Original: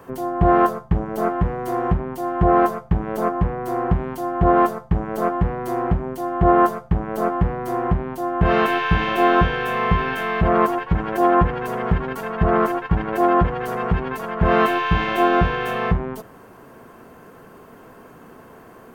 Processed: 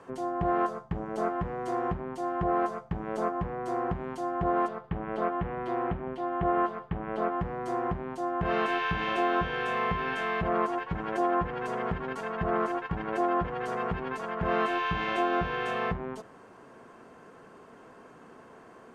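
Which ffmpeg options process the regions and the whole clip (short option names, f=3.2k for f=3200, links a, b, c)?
-filter_complex "[0:a]asettb=1/sr,asplit=3[a][b][c];[a]atrim=end=4.684[d];[b]atrim=start=4.68:end=7.4,asetpts=PTS-STARTPTS,afade=t=in:d=0.004:c=qsin,afade=t=out:st=2.716:d=0.004:c=qsin,highshelf=f=4.7k:t=q:w=1.5:g=-14,aecho=1:1:160:0.075,atrim=end_sample=119952[e];[c]atrim=start=7.396[f];[d][e]acrossfade=d=0.004:c1=hsin:c2=qsin[g];[g][f]acrossfade=d=0.004:c1=qsin:c2=hsin,lowpass=f=8.6k:w=0.5412,lowpass=f=8.6k:w=1.3066,acompressor=threshold=-18dB:ratio=2.5,lowshelf=f=130:g=-9.5,volume=-6dB"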